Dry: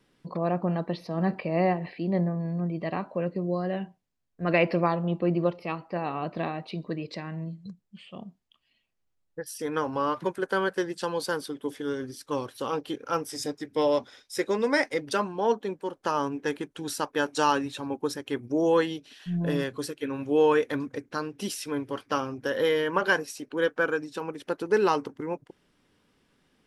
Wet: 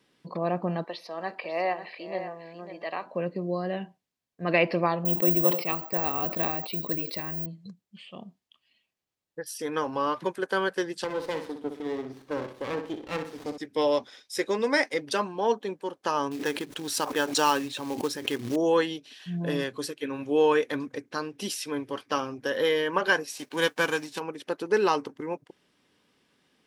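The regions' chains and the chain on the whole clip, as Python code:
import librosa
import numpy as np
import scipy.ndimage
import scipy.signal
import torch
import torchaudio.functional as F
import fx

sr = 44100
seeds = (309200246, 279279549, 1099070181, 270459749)

y = fx.chain(x, sr, fx.highpass(hz=530.0, slope=12),
    fx.echo_single(ms=546, db=-11.0), at=(0.84, 3.06))
y = fx.chain(y, sr, fx.resample_bad(factor=2, down='none', up='zero_stuff'),
    fx.sustainer(db_per_s=110.0), at=(5.05, 7.46))
y = fx.chain(y, sr, fx.high_shelf(hz=3000.0, db=-12.0),
    fx.room_flutter(wall_m=10.5, rt60_s=0.44),
    fx.running_max(window=17), at=(11.04, 13.58))
y = fx.chain(y, sr, fx.quant_float(bits=2),
    fx.pre_swell(db_per_s=80.0), at=(16.31, 18.56))
y = fx.envelope_flatten(y, sr, power=0.6, at=(23.31, 24.18), fade=0.02)
y = fx.notch(y, sr, hz=1300.0, q=23.0, at=(23.31, 24.18), fade=0.02)
y = fx.highpass(y, sr, hz=180.0, slope=6)
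y = fx.peak_eq(y, sr, hz=3900.0, db=3.0, octaves=1.8)
y = fx.notch(y, sr, hz=1400.0, q=18.0)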